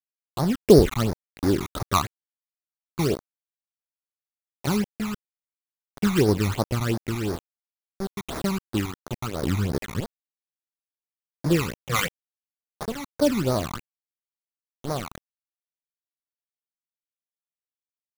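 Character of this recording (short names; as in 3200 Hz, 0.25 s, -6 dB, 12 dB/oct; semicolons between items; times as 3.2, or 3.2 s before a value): aliases and images of a low sample rate 5100 Hz, jitter 20%; random-step tremolo, depth 90%; a quantiser's noise floor 6-bit, dither none; phasing stages 12, 2.9 Hz, lowest notch 500–2900 Hz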